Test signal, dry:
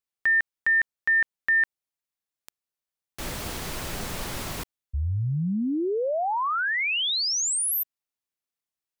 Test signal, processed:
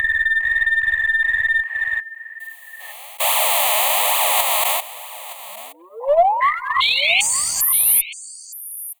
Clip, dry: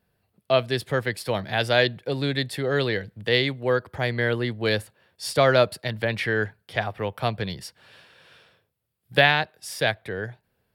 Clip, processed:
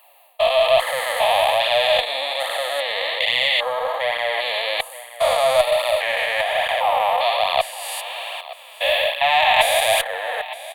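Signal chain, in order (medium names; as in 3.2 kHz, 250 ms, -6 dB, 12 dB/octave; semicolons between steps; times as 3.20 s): spectrogram pixelated in time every 400 ms; transient shaper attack -3 dB, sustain -7 dB; reverse; compression 12:1, threshold -37 dBFS; reverse; flange 1.2 Hz, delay 0.6 ms, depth 4.3 ms, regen +13%; steep high-pass 560 Hz 36 dB/octave; peaking EQ 1.9 kHz -5 dB 2.1 oct; delay 919 ms -17 dB; in parallel at -5.5 dB: one-sided clip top -48 dBFS; on the sum: static phaser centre 1.5 kHz, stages 6; loudness maximiser +32.5 dB; trim -1 dB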